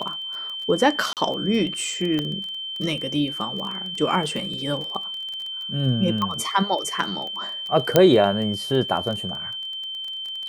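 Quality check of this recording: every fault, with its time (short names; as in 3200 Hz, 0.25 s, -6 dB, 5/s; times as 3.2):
crackle 21/s -29 dBFS
tone 3100 Hz -29 dBFS
1.13–1.17 gap 38 ms
2.19 pop -13 dBFS
6.22 pop -13 dBFS
7.96 pop -1 dBFS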